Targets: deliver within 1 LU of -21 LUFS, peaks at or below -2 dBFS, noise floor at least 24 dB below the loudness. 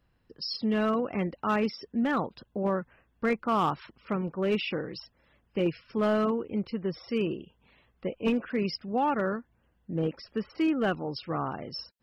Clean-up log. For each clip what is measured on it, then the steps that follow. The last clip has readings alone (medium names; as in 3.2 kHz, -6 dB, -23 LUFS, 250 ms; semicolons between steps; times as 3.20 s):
clipped samples 0.9%; clipping level -20.0 dBFS; loudness -30.5 LUFS; peak level -20.0 dBFS; loudness target -21.0 LUFS
-> clip repair -20 dBFS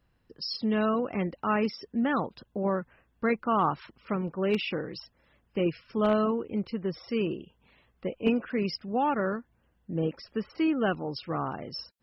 clipped samples 0.0%; loudness -30.0 LUFS; peak level -12.0 dBFS; loudness target -21.0 LUFS
-> trim +9 dB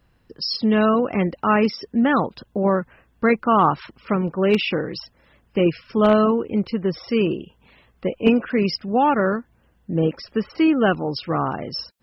loudness -21.0 LUFS; peak level -3.0 dBFS; noise floor -61 dBFS